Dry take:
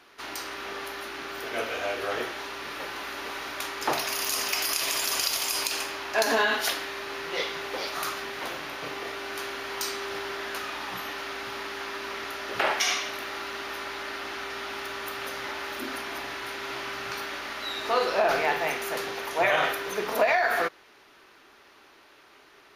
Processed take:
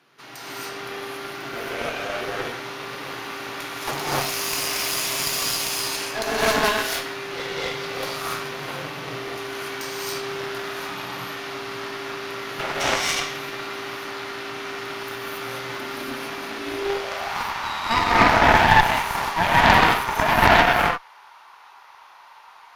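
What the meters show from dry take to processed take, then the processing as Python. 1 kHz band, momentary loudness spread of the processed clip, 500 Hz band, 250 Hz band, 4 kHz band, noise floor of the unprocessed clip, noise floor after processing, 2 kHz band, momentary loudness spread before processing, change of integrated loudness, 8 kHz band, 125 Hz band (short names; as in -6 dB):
+9.0 dB, 16 LU, +3.5 dB, +10.0 dB, +4.5 dB, -56 dBFS, -48 dBFS, +6.0 dB, 11 LU, +6.0 dB, +3.0 dB, +19.0 dB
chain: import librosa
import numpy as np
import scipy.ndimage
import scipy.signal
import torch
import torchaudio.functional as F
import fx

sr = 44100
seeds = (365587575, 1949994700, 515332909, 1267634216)

y = fx.rev_gated(x, sr, seeds[0], gate_ms=310, shape='rising', drr_db=-7.5)
y = fx.filter_sweep_highpass(y, sr, from_hz=140.0, to_hz=910.0, start_s=16.26, end_s=17.41, q=5.3)
y = fx.cheby_harmonics(y, sr, harmonics=(4,), levels_db=(-7,), full_scale_db=1.5)
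y = y * 10.0 ** (-6.0 / 20.0)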